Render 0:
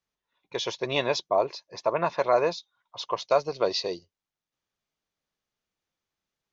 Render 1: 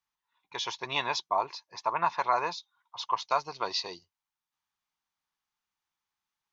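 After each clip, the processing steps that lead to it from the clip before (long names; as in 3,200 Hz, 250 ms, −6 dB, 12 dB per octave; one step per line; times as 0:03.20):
low shelf with overshoot 710 Hz −7 dB, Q 3
level −2 dB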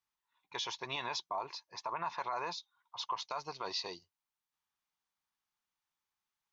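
brickwall limiter −24 dBFS, peak gain reduction 11.5 dB
level −3 dB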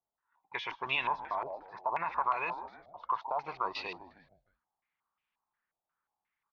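echo with shifted repeats 154 ms, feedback 42%, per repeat −100 Hz, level −12 dB
low-pass on a step sequencer 5.6 Hz 660–2,600 Hz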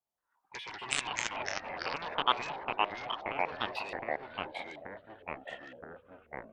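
harmonic generator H 3 −7 dB, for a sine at −18 dBFS
delay with pitch and tempo change per echo 86 ms, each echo −3 semitones, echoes 3
level +6.5 dB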